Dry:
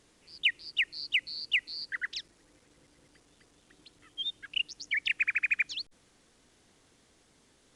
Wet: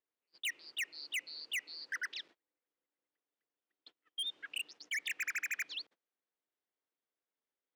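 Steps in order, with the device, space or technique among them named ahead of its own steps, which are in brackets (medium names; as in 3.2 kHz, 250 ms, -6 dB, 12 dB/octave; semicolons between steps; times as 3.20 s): 2.19–4.25 s: dynamic bell 3.3 kHz, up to +6 dB, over -60 dBFS, Q 2; walkie-talkie (band-pass 400–3000 Hz; hard clipper -34 dBFS, distortion -6 dB; gate -56 dBFS, range -29 dB)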